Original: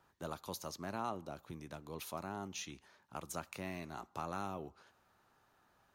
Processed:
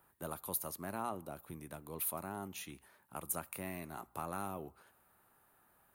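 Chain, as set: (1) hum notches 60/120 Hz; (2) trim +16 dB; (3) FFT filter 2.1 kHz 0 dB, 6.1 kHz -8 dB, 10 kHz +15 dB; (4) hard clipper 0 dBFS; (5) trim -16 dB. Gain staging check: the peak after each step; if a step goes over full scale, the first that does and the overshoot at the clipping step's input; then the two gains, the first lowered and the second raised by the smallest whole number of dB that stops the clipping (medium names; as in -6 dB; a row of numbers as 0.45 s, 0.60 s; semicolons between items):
-25.0 dBFS, -9.0 dBFS, -4.0 dBFS, -4.0 dBFS, -20.0 dBFS; nothing clips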